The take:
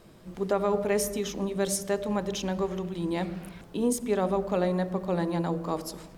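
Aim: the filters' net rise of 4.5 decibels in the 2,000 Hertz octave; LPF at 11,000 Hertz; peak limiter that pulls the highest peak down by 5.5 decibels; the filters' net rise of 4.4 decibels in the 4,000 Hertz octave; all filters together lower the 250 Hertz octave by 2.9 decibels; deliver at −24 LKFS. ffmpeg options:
ffmpeg -i in.wav -af "lowpass=11000,equalizer=frequency=250:width_type=o:gain=-4.5,equalizer=frequency=2000:width_type=o:gain=4.5,equalizer=frequency=4000:width_type=o:gain=4.5,volume=7.5dB,alimiter=limit=-12dB:level=0:latency=1" out.wav

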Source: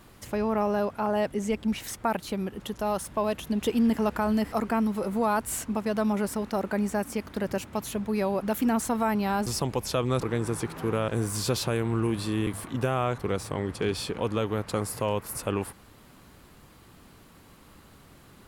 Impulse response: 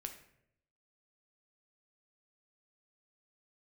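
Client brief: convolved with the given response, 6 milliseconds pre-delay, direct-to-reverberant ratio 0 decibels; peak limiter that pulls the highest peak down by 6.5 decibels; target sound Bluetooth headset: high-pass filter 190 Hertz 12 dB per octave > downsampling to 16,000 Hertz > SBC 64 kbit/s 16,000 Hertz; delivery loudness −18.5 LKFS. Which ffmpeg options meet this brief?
-filter_complex "[0:a]alimiter=limit=-21dB:level=0:latency=1,asplit=2[link_01][link_02];[1:a]atrim=start_sample=2205,adelay=6[link_03];[link_02][link_03]afir=irnorm=-1:irlink=0,volume=3dB[link_04];[link_01][link_04]amix=inputs=2:normalize=0,highpass=190,aresample=16000,aresample=44100,volume=11.5dB" -ar 16000 -c:a sbc -b:a 64k

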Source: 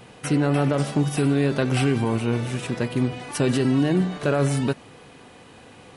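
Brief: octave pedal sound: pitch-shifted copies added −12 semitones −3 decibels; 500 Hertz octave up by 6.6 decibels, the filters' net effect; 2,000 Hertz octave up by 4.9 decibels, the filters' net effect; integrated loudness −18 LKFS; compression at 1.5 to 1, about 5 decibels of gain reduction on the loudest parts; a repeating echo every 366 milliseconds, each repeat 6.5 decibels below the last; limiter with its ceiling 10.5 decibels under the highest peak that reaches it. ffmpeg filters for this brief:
ffmpeg -i in.wav -filter_complex "[0:a]equalizer=frequency=500:width_type=o:gain=8,equalizer=frequency=2000:width_type=o:gain=6,acompressor=threshold=-27dB:ratio=1.5,alimiter=limit=-21.5dB:level=0:latency=1,aecho=1:1:366|732|1098|1464|1830|2196:0.473|0.222|0.105|0.0491|0.0231|0.0109,asplit=2[link_01][link_02];[link_02]asetrate=22050,aresample=44100,atempo=2,volume=-3dB[link_03];[link_01][link_03]amix=inputs=2:normalize=0,volume=10dB" out.wav

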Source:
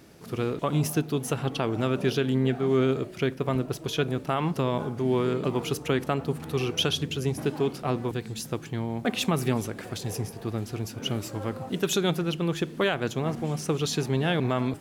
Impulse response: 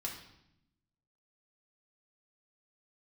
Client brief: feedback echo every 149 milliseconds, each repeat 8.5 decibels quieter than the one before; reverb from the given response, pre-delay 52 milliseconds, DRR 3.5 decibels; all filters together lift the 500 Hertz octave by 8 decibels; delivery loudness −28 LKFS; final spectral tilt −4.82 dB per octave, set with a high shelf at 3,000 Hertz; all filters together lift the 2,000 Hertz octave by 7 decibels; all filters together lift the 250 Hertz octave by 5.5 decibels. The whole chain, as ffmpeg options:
-filter_complex "[0:a]equalizer=frequency=250:width_type=o:gain=4,equalizer=frequency=500:width_type=o:gain=8.5,equalizer=frequency=2000:width_type=o:gain=5.5,highshelf=frequency=3000:gain=8.5,aecho=1:1:149|298|447|596:0.376|0.143|0.0543|0.0206,asplit=2[link_01][link_02];[1:a]atrim=start_sample=2205,adelay=52[link_03];[link_02][link_03]afir=irnorm=-1:irlink=0,volume=-3.5dB[link_04];[link_01][link_04]amix=inputs=2:normalize=0,volume=-8.5dB"

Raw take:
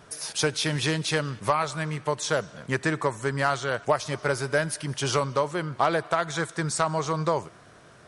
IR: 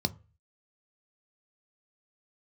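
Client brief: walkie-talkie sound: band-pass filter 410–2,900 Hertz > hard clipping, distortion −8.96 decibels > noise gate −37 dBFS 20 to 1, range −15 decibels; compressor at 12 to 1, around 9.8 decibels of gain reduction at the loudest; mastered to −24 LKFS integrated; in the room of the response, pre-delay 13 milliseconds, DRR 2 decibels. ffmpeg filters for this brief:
-filter_complex "[0:a]acompressor=threshold=-28dB:ratio=12,asplit=2[link_01][link_02];[1:a]atrim=start_sample=2205,adelay=13[link_03];[link_02][link_03]afir=irnorm=-1:irlink=0,volume=-7.5dB[link_04];[link_01][link_04]amix=inputs=2:normalize=0,highpass=410,lowpass=2900,asoftclip=type=hard:threshold=-29.5dB,agate=range=-15dB:threshold=-37dB:ratio=20,volume=12.5dB"

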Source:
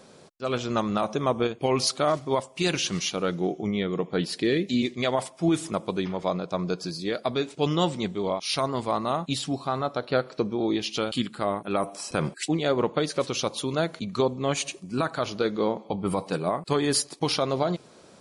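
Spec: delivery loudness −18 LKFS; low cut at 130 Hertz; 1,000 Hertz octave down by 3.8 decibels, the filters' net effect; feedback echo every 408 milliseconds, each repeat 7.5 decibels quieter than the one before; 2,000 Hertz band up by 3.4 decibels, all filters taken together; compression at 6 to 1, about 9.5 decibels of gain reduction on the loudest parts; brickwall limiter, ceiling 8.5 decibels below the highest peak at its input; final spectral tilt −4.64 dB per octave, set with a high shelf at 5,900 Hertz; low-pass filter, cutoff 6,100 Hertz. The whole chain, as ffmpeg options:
ffmpeg -i in.wav -af "highpass=130,lowpass=6100,equalizer=frequency=1000:width_type=o:gain=-7,equalizer=frequency=2000:width_type=o:gain=7,highshelf=frequency=5900:gain=-4,acompressor=threshold=-30dB:ratio=6,alimiter=limit=-24dB:level=0:latency=1,aecho=1:1:408|816|1224|1632|2040:0.422|0.177|0.0744|0.0312|0.0131,volume=17.5dB" out.wav

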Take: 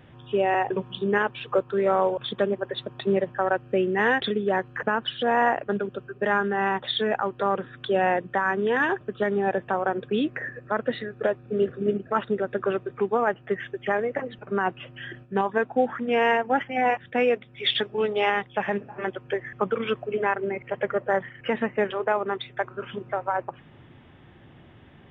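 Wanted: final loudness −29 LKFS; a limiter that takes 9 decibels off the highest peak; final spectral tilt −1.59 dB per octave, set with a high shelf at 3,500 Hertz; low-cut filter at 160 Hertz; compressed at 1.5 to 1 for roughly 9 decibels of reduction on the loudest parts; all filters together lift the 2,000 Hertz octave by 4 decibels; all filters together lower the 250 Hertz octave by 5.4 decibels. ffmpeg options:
ffmpeg -i in.wav -af "highpass=160,equalizer=frequency=250:width_type=o:gain=-6.5,equalizer=frequency=2000:width_type=o:gain=6.5,highshelf=frequency=3500:gain=-6,acompressor=threshold=-42dB:ratio=1.5,volume=8dB,alimiter=limit=-17.5dB:level=0:latency=1" out.wav

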